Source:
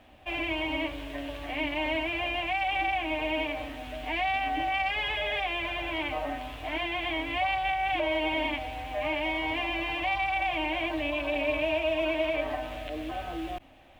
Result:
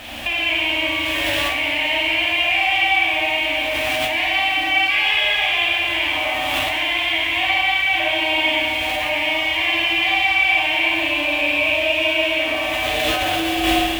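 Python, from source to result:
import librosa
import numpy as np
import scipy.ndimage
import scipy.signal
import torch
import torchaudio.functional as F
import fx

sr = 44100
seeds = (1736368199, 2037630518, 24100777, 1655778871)

p1 = fx.tilt_shelf(x, sr, db=-8.5, hz=1500.0)
p2 = fx.rev_schroeder(p1, sr, rt60_s=1.9, comb_ms=27, drr_db=-5.0)
p3 = fx.over_compress(p2, sr, threshold_db=-37.0, ratio=-0.5)
p4 = p2 + (p3 * 10.0 ** (3.0 / 20.0))
p5 = fx.peak_eq(p4, sr, hz=92.0, db=3.5, octaves=0.77)
y = p5 * 10.0 ** (4.0 / 20.0)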